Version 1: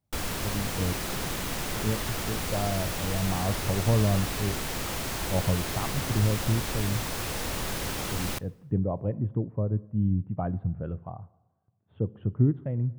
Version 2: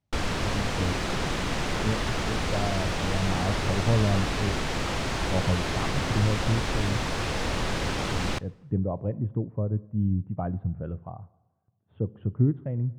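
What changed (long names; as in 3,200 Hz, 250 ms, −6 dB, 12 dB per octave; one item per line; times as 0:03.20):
background +5.0 dB
master: add high-frequency loss of the air 93 metres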